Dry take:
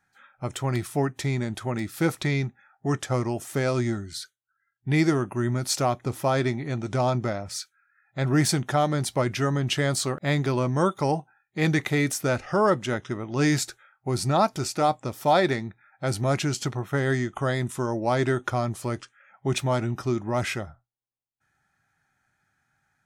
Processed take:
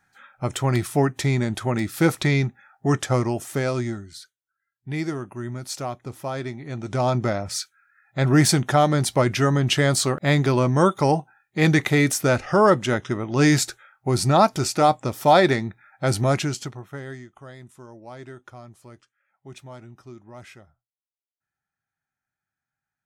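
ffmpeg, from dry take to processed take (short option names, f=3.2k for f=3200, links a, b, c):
-af "volume=16dB,afade=t=out:st=3.04:d=1.15:silence=0.281838,afade=t=in:st=6.59:d=0.78:silence=0.281838,afade=t=out:st=16.19:d=0.54:silence=0.251189,afade=t=out:st=16.73:d=0.57:silence=0.334965"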